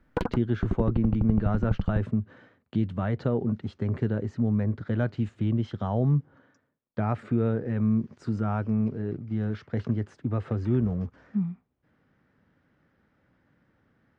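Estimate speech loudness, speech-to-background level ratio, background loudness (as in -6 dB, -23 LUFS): -28.5 LUFS, 3.5 dB, -32.0 LUFS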